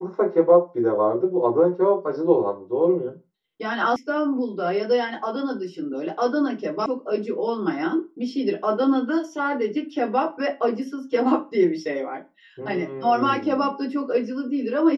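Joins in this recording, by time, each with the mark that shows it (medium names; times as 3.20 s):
3.96 s: sound stops dead
6.86 s: sound stops dead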